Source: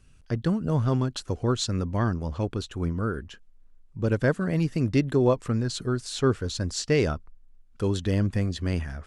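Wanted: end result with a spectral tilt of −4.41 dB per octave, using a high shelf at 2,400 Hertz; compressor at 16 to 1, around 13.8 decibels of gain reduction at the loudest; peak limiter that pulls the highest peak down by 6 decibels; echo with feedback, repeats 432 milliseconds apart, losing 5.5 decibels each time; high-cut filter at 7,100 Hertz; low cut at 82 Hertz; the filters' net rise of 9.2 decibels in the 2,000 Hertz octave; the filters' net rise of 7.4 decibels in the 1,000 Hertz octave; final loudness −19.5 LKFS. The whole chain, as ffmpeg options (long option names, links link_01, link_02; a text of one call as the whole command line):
ffmpeg -i in.wav -af "highpass=82,lowpass=7100,equalizer=frequency=1000:width_type=o:gain=5.5,equalizer=frequency=2000:width_type=o:gain=6,highshelf=frequency=2400:gain=8.5,acompressor=threshold=-28dB:ratio=16,alimiter=limit=-22.5dB:level=0:latency=1,aecho=1:1:432|864|1296|1728|2160|2592|3024:0.531|0.281|0.149|0.079|0.0419|0.0222|0.0118,volume=14dB" out.wav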